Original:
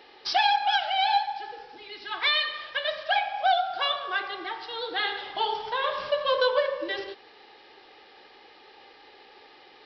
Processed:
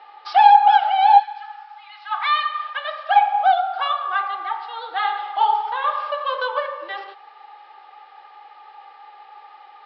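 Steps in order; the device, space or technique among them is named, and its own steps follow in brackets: tin-can telephone (BPF 680–3100 Hz; small resonant body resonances 840/1200 Hz, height 17 dB, ringing for 35 ms); 1.19–3.01 HPF 1300 Hz -> 450 Hz 24 dB/oct

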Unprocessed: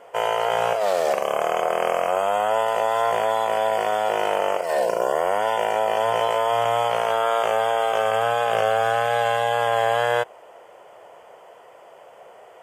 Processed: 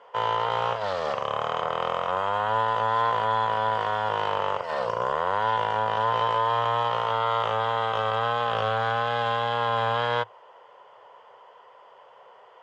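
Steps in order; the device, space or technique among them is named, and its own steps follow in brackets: guitar amplifier (tube stage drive 13 dB, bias 0.7; tone controls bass -9 dB, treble +14 dB; speaker cabinet 95–3600 Hz, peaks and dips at 110 Hz +10 dB, 320 Hz -9 dB, 680 Hz -8 dB, 1000 Hz +8 dB, 2400 Hz -7 dB)

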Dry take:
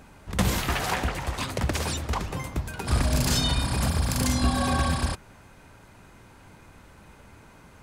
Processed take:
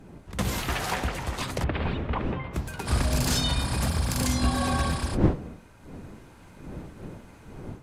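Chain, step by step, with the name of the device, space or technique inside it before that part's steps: 1.64–2.54 inverse Chebyshev low-pass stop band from 5900 Hz, stop band 40 dB; smartphone video outdoors (wind noise 280 Hz; AGC gain up to 6 dB; gain -7 dB; AAC 64 kbps 32000 Hz)

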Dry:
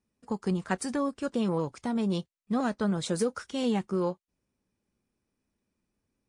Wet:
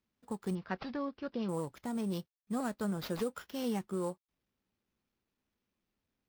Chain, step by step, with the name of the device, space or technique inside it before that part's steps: early companding sampler (sample-rate reducer 8600 Hz, jitter 0%; companded quantiser 8-bit); 0.55–1.49 elliptic low-pass 5100 Hz, stop band 40 dB; gain -7 dB

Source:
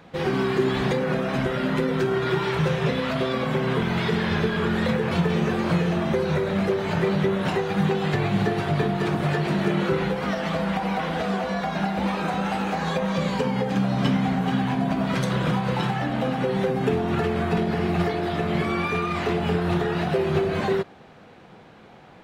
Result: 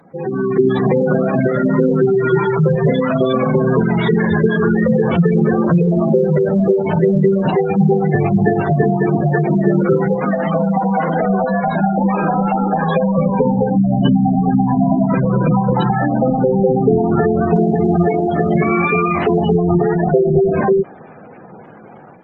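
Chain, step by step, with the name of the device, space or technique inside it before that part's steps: noise-suppressed video call (HPF 120 Hz 12 dB/oct; spectral gate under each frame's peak -15 dB strong; AGC gain up to 8.5 dB; gain +2.5 dB; Opus 24 kbps 48000 Hz)

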